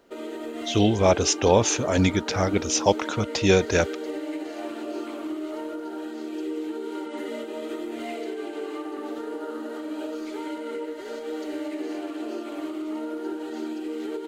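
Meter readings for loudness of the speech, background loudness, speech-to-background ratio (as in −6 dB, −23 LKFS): −22.5 LKFS, −33.0 LKFS, 10.5 dB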